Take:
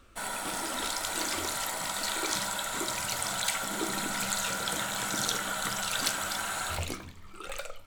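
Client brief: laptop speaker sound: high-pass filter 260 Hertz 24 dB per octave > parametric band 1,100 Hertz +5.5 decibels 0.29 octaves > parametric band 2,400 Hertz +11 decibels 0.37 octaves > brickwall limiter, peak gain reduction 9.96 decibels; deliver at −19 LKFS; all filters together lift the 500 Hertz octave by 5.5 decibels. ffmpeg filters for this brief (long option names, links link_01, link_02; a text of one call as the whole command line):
ffmpeg -i in.wav -af "highpass=frequency=260:width=0.5412,highpass=frequency=260:width=1.3066,equalizer=frequency=500:width_type=o:gain=7,equalizer=frequency=1100:width_type=o:width=0.29:gain=5.5,equalizer=frequency=2400:width_type=o:width=0.37:gain=11,volume=11dB,alimiter=limit=-9.5dB:level=0:latency=1" out.wav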